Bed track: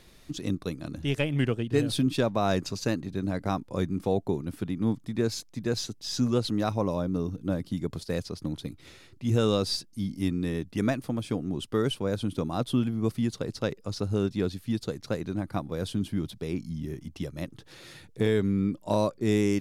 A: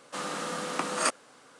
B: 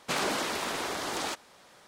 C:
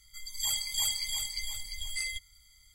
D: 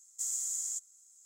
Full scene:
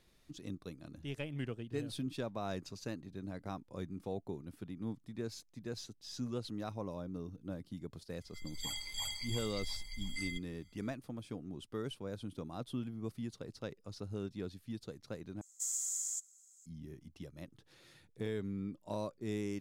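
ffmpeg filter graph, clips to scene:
-filter_complex "[0:a]volume=-14dB[a];[3:a]lowpass=f=2k:p=1[b];[a]asplit=2[c][d];[c]atrim=end=15.414[e];[4:a]atrim=end=1.25,asetpts=PTS-STARTPTS,volume=-2.5dB[f];[d]atrim=start=16.656[g];[b]atrim=end=2.74,asetpts=PTS-STARTPTS,volume=-2dB,afade=t=in:d=0.004:c=hsin,afade=t=out:st=2.736:d=0.004:c=hsin,adelay=8200[h];[e][f]acrossfade=d=0.004:c1=hsin:c2=hsin[i];[i][g]acrossfade=d=0.004:c1=hsin:c2=hsin[j];[j][h]amix=inputs=2:normalize=0"

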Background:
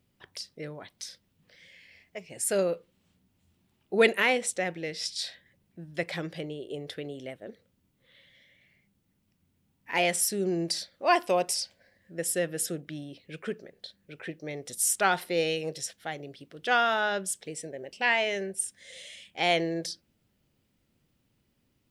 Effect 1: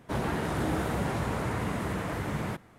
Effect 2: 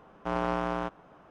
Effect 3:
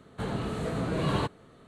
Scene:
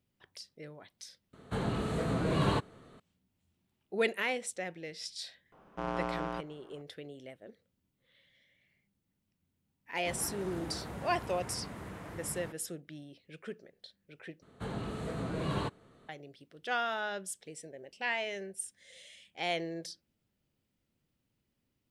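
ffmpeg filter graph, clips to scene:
-filter_complex "[3:a]asplit=2[a][b];[0:a]volume=-8.5dB[c];[2:a]acontrast=85[d];[c]asplit=3[e][f][g];[e]atrim=end=1.334[h];[a]atrim=end=1.67,asetpts=PTS-STARTPTS,volume=-1dB[i];[f]atrim=start=2.996:end=14.424[j];[b]atrim=end=1.67,asetpts=PTS-STARTPTS,volume=-6dB[k];[g]atrim=start=16.086[l];[d]atrim=end=1.3,asetpts=PTS-STARTPTS,volume=-12.5dB,afade=t=in:d=0.004:c=hsin,afade=t=out:st=1.296:d=0.004:c=hsin,adelay=5520[m];[1:a]atrim=end=2.78,asetpts=PTS-STARTPTS,volume=-12.5dB,afade=t=in:d=0.004:c=hsin,afade=t=out:st=2.776:d=0.004:c=hsin,adelay=9960[n];[h][i]acrossfade=d=0.004:c1=hsin:c2=hsin[o];[o][j]acrossfade=d=0.004:c1=hsin:c2=hsin[p];[p][k]acrossfade=d=0.004:c1=hsin:c2=hsin[q];[q][l]acrossfade=d=0.004:c1=hsin:c2=hsin[r];[r][m][n]amix=inputs=3:normalize=0"

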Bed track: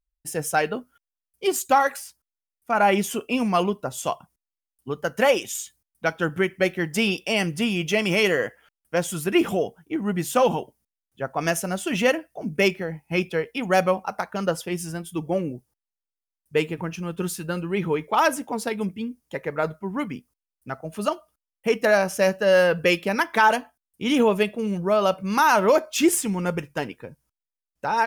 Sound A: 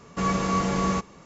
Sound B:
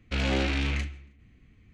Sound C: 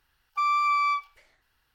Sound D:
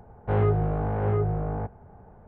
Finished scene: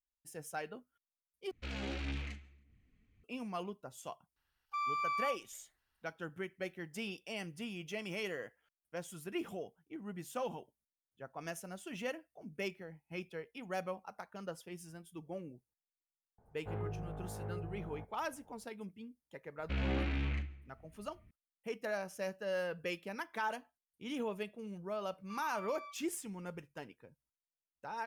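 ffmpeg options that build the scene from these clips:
-filter_complex "[2:a]asplit=2[a][b];[3:a]asplit=2[c][d];[0:a]volume=-19.5dB[e];[a]aphaser=in_gain=1:out_gain=1:delay=4.9:decay=0.38:speed=1.7:type=sinusoidal[f];[b]bass=f=250:g=3,treble=f=4k:g=-15[g];[d]alimiter=level_in=2.5dB:limit=-24dB:level=0:latency=1:release=71,volume=-2.5dB[h];[e]asplit=2[i][j];[i]atrim=end=1.514[k];[f]atrim=end=1.73,asetpts=PTS-STARTPTS,volume=-14.5dB[l];[j]atrim=start=3.236[m];[c]atrim=end=1.74,asetpts=PTS-STARTPTS,volume=-12dB,afade=t=in:d=0.004:c=hsin,afade=t=out:st=1.736:d=0.004:c=hsin,adelay=4360[n];[4:a]atrim=end=2.27,asetpts=PTS-STARTPTS,volume=-18dB,afade=t=in:d=0.004:c=hsin,afade=t=out:st=2.266:d=0.004:c=hsin,adelay=16380[o];[g]atrim=end=1.73,asetpts=PTS-STARTPTS,volume=-9.5dB,afade=t=in:d=0.004:c=hsin,afade=t=out:st=1.726:d=0.004:c=hsin,adelay=19580[p];[h]atrim=end=1.74,asetpts=PTS-STARTPTS,volume=-17.5dB,afade=t=in:d=0.004:c=hsin,afade=t=out:st=1.736:d=0.004:c=hsin,adelay=24930[q];[k][l]acrossfade=d=0.004:c1=hsin:c2=hsin[r];[r][m]acrossfade=d=0.004:c1=hsin:c2=hsin[s];[s][n][o][p][q]amix=inputs=5:normalize=0"

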